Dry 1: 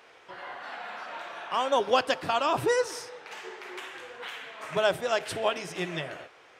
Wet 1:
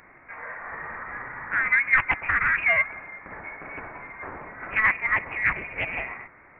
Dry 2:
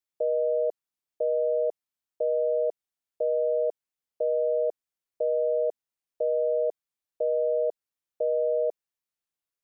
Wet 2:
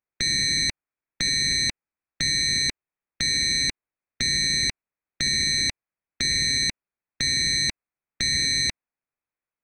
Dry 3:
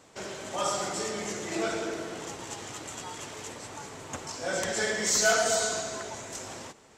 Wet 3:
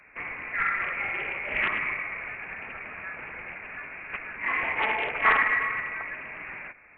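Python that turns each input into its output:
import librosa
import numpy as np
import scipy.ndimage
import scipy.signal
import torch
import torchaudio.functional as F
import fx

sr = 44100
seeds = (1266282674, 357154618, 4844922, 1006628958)

y = fx.freq_invert(x, sr, carrier_hz=2600)
y = fx.doppler_dist(y, sr, depth_ms=0.34)
y = y * librosa.db_to_amplitude(3.5)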